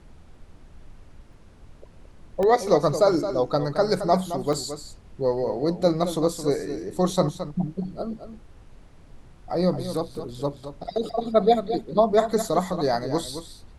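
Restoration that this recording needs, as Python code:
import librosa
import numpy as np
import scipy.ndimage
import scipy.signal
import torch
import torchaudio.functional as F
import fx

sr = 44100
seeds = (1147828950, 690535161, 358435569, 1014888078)

y = fx.fix_interpolate(x, sr, at_s=(1.33, 2.43, 4.53, 10.15, 11.09), length_ms=1.3)
y = fx.noise_reduce(y, sr, print_start_s=1.12, print_end_s=1.62, reduce_db=20.0)
y = fx.fix_echo_inverse(y, sr, delay_ms=219, level_db=-10.5)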